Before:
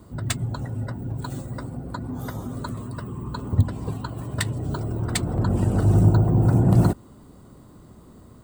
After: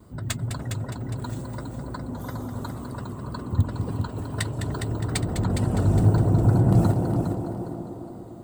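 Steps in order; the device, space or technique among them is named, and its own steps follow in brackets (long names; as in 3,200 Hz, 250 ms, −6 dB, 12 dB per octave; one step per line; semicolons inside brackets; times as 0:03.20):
multi-head tape echo (echo machine with several playback heads 205 ms, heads first and second, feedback 45%, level −9 dB; tape wow and flutter)
delay with a band-pass on its return 297 ms, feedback 61%, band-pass 490 Hz, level −4 dB
level −3 dB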